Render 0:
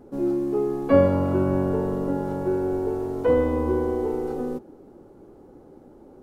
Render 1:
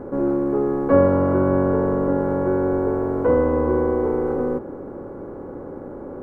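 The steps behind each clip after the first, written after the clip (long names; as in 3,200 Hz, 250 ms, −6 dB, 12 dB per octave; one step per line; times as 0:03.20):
compressor on every frequency bin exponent 0.6
high shelf with overshoot 2,200 Hz −12.5 dB, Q 1.5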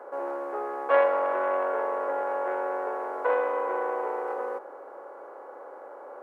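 phase distortion by the signal itself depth 0.22 ms
high-pass filter 610 Hz 24 dB per octave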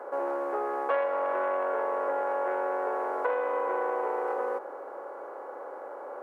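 downward compressor 4 to 1, threshold −29 dBFS, peak gain reduction 11 dB
level +3 dB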